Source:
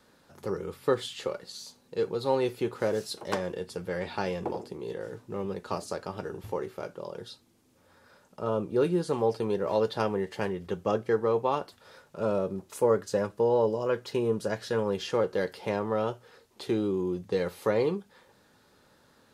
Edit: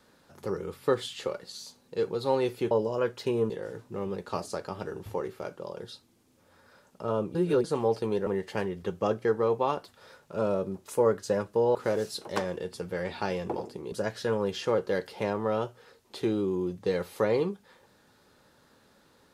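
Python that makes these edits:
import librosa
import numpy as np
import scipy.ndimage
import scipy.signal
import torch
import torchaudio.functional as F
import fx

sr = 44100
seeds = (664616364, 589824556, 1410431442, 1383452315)

y = fx.edit(x, sr, fx.swap(start_s=2.71, length_s=2.17, other_s=13.59, other_length_s=0.79),
    fx.reverse_span(start_s=8.73, length_s=0.29),
    fx.cut(start_s=9.65, length_s=0.46), tone=tone)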